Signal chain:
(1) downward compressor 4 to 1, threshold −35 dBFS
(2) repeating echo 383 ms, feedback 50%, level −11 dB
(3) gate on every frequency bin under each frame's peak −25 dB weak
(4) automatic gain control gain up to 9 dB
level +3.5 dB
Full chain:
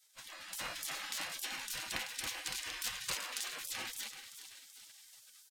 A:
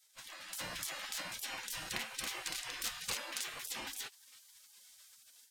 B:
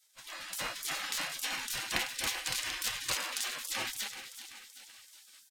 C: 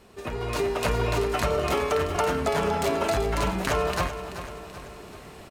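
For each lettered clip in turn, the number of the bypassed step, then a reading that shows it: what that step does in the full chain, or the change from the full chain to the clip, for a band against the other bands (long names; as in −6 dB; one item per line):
2, change in momentary loudness spread +4 LU
1, change in crest factor +2.0 dB
3, 8 kHz band −22.0 dB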